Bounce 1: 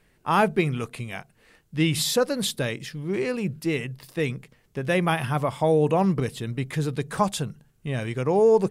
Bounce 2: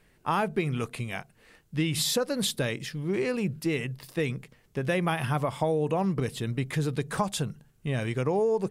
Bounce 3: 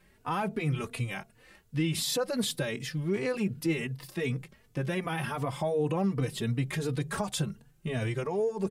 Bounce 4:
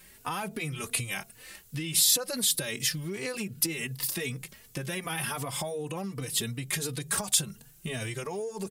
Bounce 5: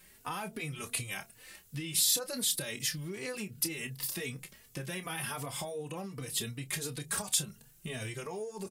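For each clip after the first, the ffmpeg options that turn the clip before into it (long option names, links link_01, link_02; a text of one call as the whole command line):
ffmpeg -i in.wav -af "acompressor=threshold=-23dB:ratio=6" out.wav
ffmpeg -i in.wav -filter_complex "[0:a]alimiter=limit=-22dB:level=0:latency=1:release=26,asplit=2[link_01][link_02];[link_02]adelay=3.4,afreqshift=2.7[link_03];[link_01][link_03]amix=inputs=2:normalize=1,volume=3dB" out.wav
ffmpeg -i in.wav -af "acompressor=threshold=-35dB:ratio=6,crystalizer=i=5.5:c=0,volume=2dB" out.wav
ffmpeg -i in.wav -filter_complex "[0:a]asplit=2[link_01][link_02];[link_02]adelay=28,volume=-11dB[link_03];[link_01][link_03]amix=inputs=2:normalize=0,volume=-5dB" out.wav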